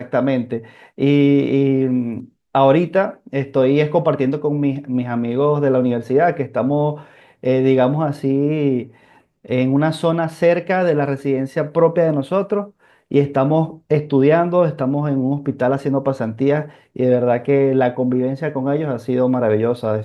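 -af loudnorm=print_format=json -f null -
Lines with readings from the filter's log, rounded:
"input_i" : "-17.9",
"input_tp" : "-1.5",
"input_lra" : "1.4",
"input_thresh" : "-28.2",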